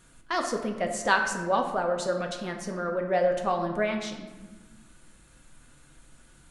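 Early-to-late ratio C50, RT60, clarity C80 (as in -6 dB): 6.5 dB, 1.3 s, 8.5 dB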